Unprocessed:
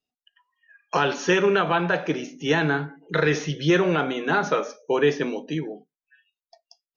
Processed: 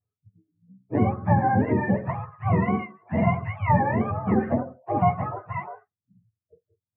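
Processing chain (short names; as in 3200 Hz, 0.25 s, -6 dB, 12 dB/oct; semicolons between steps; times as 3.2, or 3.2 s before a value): spectrum mirrored in octaves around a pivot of 560 Hz; Gaussian blur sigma 3 samples; harmoniser +5 st -18 dB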